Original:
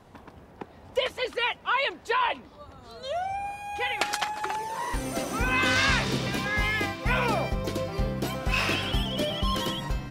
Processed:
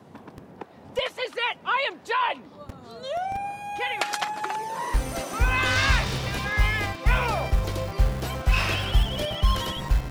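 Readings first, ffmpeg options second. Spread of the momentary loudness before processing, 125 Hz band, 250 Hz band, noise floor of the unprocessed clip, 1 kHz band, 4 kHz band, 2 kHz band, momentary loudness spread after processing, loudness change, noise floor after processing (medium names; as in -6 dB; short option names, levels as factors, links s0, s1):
10 LU, +5.5 dB, -3.5 dB, -51 dBFS, +1.5 dB, 0.0 dB, +0.5 dB, 14 LU, +1.5 dB, -49 dBFS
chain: -filter_complex "[0:a]lowshelf=f=440:g=10,acrossover=split=110|550|3300[s0][s1][s2][s3];[s0]acrusher=bits=5:mix=0:aa=0.000001[s4];[s1]acompressor=threshold=0.00891:ratio=6[s5];[s4][s5][s2][s3]amix=inputs=4:normalize=0"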